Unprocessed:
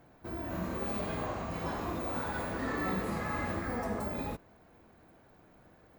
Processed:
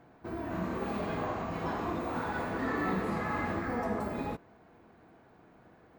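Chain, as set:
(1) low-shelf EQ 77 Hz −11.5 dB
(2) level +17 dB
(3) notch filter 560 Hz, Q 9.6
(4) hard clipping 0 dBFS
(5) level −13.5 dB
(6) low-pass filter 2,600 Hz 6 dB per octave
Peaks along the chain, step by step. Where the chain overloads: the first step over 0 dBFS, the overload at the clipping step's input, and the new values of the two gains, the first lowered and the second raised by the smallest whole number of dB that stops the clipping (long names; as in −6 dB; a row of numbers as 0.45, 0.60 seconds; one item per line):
−22.5, −5.5, −5.5, −5.5, −19.0, −20.0 dBFS
no step passes full scale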